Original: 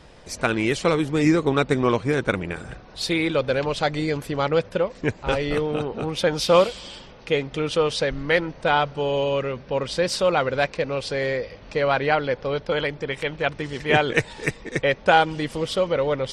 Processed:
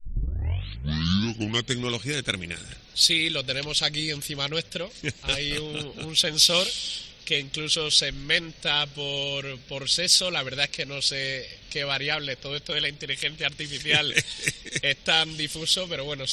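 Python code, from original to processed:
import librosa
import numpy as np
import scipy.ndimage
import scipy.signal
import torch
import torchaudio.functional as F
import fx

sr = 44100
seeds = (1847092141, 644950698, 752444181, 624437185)

y = fx.tape_start_head(x, sr, length_s=1.88)
y = fx.curve_eq(y, sr, hz=(120.0, 1000.0, 3600.0), db=(0, -10, 15))
y = y * librosa.db_to_amplitude(-5.0)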